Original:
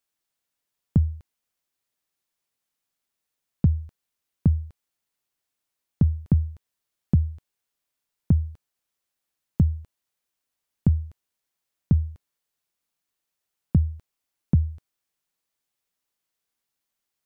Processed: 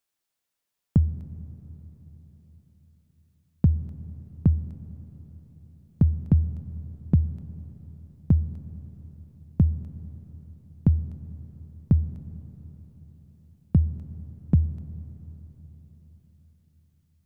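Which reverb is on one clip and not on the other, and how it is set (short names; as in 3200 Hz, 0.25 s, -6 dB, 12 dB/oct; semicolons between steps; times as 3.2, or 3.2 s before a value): digital reverb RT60 4.7 s, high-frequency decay 0.8×, pre-delay 5 ms, DRR 13.5 dB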